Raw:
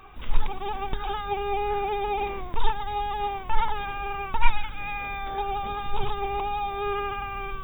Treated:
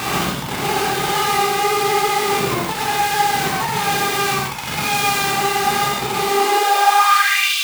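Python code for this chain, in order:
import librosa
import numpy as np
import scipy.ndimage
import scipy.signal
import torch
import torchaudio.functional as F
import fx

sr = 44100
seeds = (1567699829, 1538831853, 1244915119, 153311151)

y = np.sign(x) * np.sqrt(np.mean(np.square(x)))
y = fx.rev_gated(y, sr, seeds[0], gate_ms=200, shape='flat', drr_db=-6.5)
y = fx.filter_sweep_highpass(y, sr, from_hz=150.0, to_hz=3100.0, start_s=6.16, end_s=7.55, q=3.1)
y = y * librosa.db_to_amplitude(-1.0)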